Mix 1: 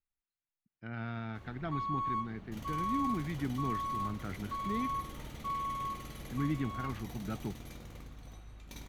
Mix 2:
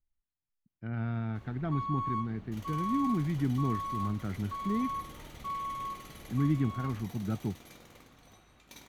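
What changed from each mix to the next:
speech: add spectral tilt −2.5 dB per octave
second sound: add high-pass filter 400 Hz 6 dB per octave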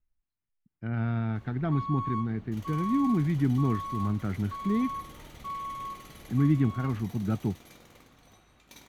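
speech +4.5 dB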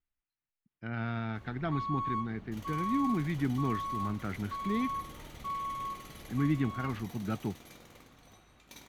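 speech: add spectral tilt +2.5 dB per octave

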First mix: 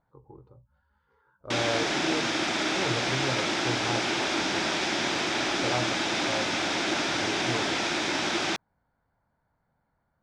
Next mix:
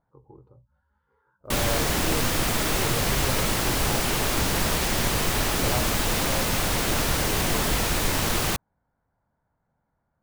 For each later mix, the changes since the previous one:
background: remove loudspeaker in its box 290–4,500 Hz, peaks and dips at 330 Hz +7 dB, 470 Hz −9 dB, 1,100 Hz −7 dB, 1,900 Hz −4 dB, 2,900 Hz −7 dB, 4,300 Hz −9 dB
master: add high-shelf EQ 2,400 Hz −10.5 dB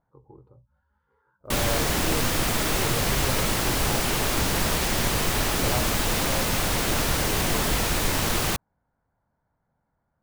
nothing changed

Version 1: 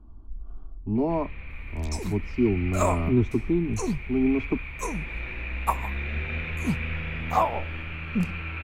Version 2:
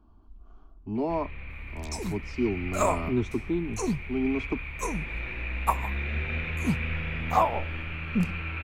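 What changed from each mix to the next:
speech: add spectral tilt +2.5 dB per octave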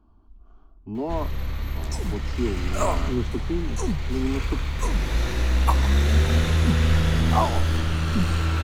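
first sound: remove transistor ladder low-pass 2,500 Hz, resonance 85%

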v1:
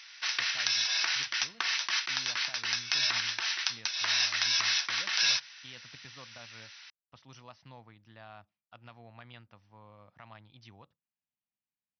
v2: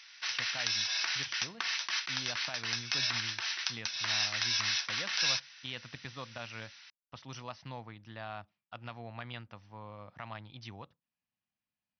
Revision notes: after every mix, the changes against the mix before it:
speech +7.5 dB
background −3.5 dB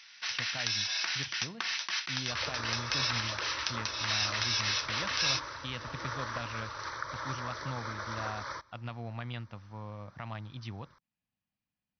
second sound: unmuted
master: add low-shelf EQ 290 Hz +8.5 dB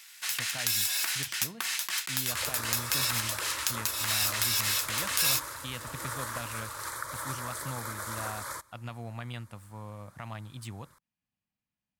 master: remove linear-phase brick-wall low-pass 6,100 Hz

